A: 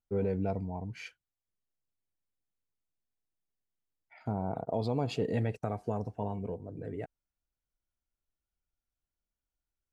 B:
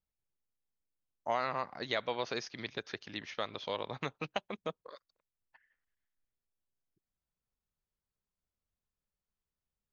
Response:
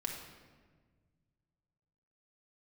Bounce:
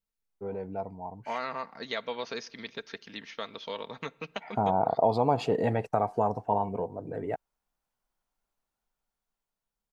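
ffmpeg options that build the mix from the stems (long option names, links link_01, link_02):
-filter_complex "[0:a]deesser=1,equalizer=frequency=890:width=1:gain=13,dynaudnorm=framelen=340:gausssize=11:maxgain=15dB,adelay=300,volume=-8.5dB[link_01];[1:a]bandreject=frequency=710:width=12,aecho=1:1:4.4:0.43,volume=-1dB,asplit=2[link_02][link_03];[link_03]volume=-21.5dB[link_04];[2:a]atrim=start_sample=2205[link_05];[link_04][link_05]afir=irnorm=-1:irlink=0[link_06];[link_01][link_02][link_06]amix=inputs=3:normalize=0,equalizer=frequency=69:width=1.8:gain=-9.5"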